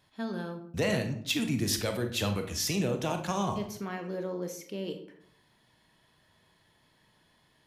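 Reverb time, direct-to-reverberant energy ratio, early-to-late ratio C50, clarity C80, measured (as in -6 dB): 0.65 s, 5.5 dB, 8.5 dB, 12.5 dB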